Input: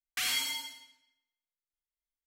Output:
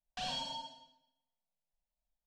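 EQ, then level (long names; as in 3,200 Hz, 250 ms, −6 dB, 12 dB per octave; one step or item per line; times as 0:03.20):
head-to-tape spacing loss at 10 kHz 42 dB
phaser with its sweep stopped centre 340 Hz, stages 6
phaser with its sweep stopped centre 880 Hz, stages 4
+14.5 dB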